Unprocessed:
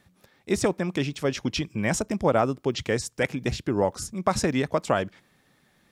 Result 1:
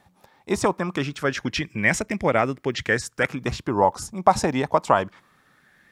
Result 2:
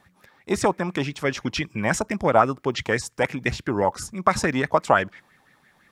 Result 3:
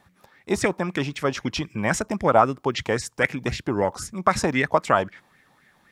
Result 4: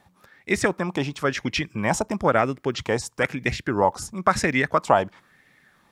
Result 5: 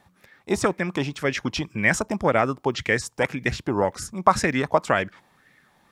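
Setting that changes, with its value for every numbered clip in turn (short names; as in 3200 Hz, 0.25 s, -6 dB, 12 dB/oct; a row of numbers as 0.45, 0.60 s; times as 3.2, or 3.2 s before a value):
LFO bell, rate: 0.23, 5.9, 3.8, 1, 1.9 Hz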